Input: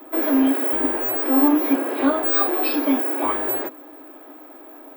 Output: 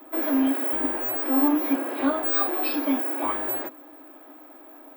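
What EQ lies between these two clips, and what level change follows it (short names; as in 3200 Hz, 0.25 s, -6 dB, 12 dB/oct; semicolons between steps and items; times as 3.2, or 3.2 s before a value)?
bell 420 Hz -6.5 dB 0.34 oct; -4.0 dB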